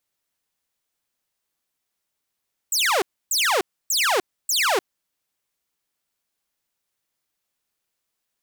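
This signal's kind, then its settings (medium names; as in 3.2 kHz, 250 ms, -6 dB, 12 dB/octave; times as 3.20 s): burst of laser zaps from 8.3 kHz, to 340 Hz, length 0.30 s saw, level -15 dB, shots 4, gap 0.29 s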